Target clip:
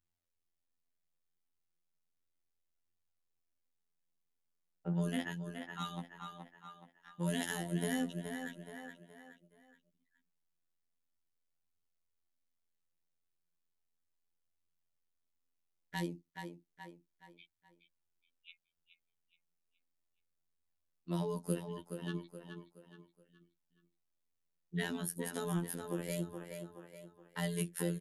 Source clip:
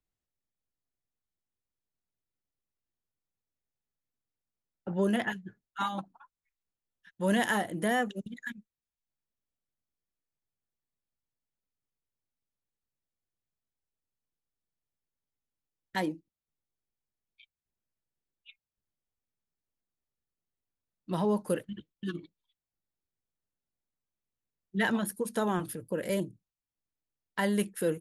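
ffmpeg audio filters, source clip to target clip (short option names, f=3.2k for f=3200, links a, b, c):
-filter_complex "[0:a]flanger=delay=0.6:depth=6.6:regen=52:speed=0.34:shape=triangular,asplit=2[a][b];[b]aecho=0:1:422|844|1266|1688:0.299|0.113|0.0431|0.0164[c];[a][c]amix=inputs=2:normalize=0,afftfilt=real='hypot(re,im)*cos(PI*b)':imag='0':win_size=2048:overlap=0.75,acrossover=split=340|3000[d][e][f];[e]acompressor=threshold=-51dB:ratio=3[g];[d][g][f]amix=inputs=3:normalize=0,volume=5.5dB"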